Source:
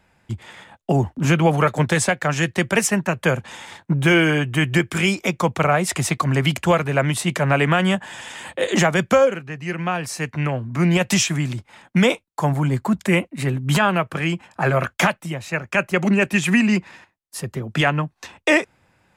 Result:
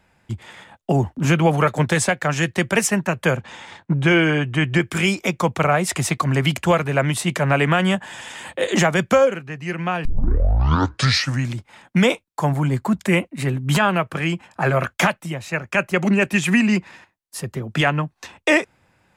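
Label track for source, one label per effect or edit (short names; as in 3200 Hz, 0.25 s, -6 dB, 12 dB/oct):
3.360000	4.810000	air absorption 69 m
10.050000	10.050000	tape start 1.52 s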